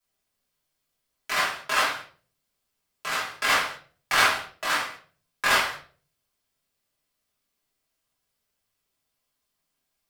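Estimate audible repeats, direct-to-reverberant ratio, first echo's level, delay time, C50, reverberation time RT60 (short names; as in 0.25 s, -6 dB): none, -9.5 dB, none, none, 6.5 dB, 0.45 s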